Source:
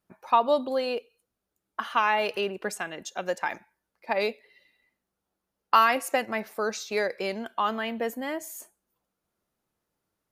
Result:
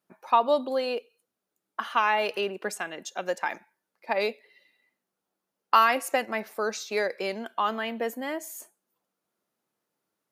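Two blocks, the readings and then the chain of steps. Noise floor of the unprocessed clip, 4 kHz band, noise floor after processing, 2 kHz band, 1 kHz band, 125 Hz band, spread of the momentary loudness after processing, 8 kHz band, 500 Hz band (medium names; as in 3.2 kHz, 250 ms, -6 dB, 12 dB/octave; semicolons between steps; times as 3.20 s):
-84 dBFS, 0.0 dB, -85 dBFS, 0.0 dB, 0.0 dB, no reading, 12 LU, 0.0 dB, 0.0 dB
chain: high-pass 190 Hz 12 dB/octave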